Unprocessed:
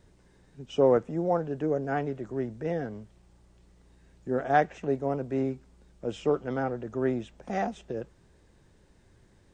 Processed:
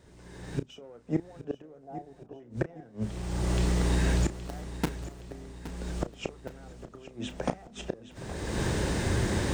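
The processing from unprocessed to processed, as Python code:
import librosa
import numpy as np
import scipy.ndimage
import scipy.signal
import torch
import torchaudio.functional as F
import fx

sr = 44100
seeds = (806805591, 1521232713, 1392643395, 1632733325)

p1 = fx.delta_hold(x, sr, step_db=-26.0, at=(4.34, 5.21))
p2 = fx.recorder_agc(p1, sr, target_db=-15.0, rise_db_per_s=32.0, max_gain_db=30)
p3 = scipy.signal.sosfilt(scipy.signal.butter(2, 48.0, 'highpass', fs=sr, output='sos'), p2)
p4 = fx.hum_notches(p3, sr, base_hz=50, count=5)
p5 = np.clip(10.0 ** (22.0 / 20.0) * p4, -1.0, 1.0) / 10.0 ** (22.0 / 20.0)
p6 = p4 + (p5 * 10.0 ** (-6.0 / 20.0))
p7 = fx.lowpass_res(p6, sr, hz=760.0, q=4.9, at=(1.83, 2.4))
p8 = fx.gate_flip(p7, sr, shuts_db=-16.0, range_db=-30)
p9 = fx.doubler(p8, sr, ms=33.0, db=-12.5)
y = p9 + fx.echo_feedback(p9, sr, ms=819, feedback_pct=50, wet_db=-14.0, dry=0)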